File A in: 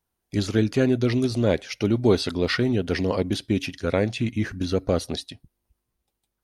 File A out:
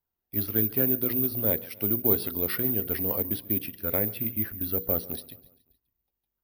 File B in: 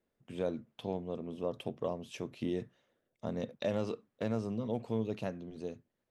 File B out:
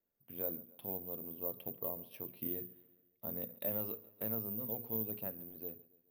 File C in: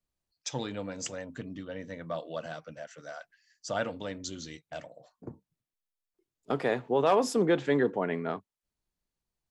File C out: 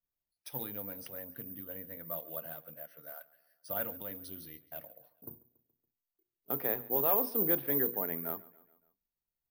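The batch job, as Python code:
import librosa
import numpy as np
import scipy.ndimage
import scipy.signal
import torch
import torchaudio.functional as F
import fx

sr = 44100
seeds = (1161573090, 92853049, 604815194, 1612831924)

y = scipy.signal.sosfilt(scipy.signal.butter(16, 6000.0, 'lowpass', fs=sr, output='sos'), x)
y = fx.high_shelf(y, sr, hz=4000.0, db=-9.0)
y = fx.hum_notches(y, sr, base_hz=60, count=8)
y = fx.echo_feedback(y, sr, ms=141, feedback_pct=53, wet_db=-21)
y = (np.kron(y[::3], np.eye(3)[0]) * 3)[:len(y)]
y = F.gain(torch.from_numpy(y), -8.5).numpy()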